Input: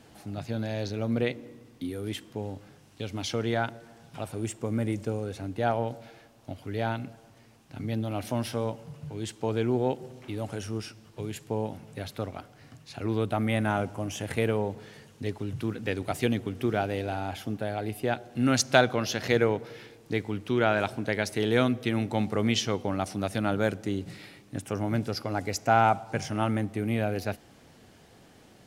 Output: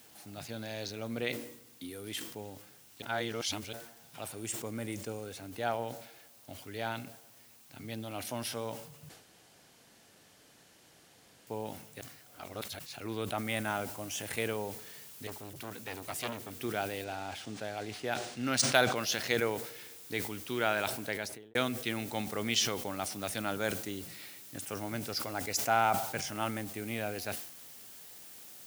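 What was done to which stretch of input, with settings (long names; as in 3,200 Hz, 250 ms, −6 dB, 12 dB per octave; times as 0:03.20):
0:03.02–0:03.73: reverse
0:09.09–0:11.47: fill with room tone
0:12.01–0:12.79: reverse
0:13.38: noise floor change −63 dB −54 dB
0:15.27–0:16.51: saturating transformer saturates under 1,400 Hz
0:17.04–0:18.96: linearly interpolated sample-rate reduction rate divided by 3×
0:20.99–0:21.55: fade out and dull
whole clip: spectral tilt +2.5 dB per octave; level that may fall only so fast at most 73 dB per second; level −5.5 dB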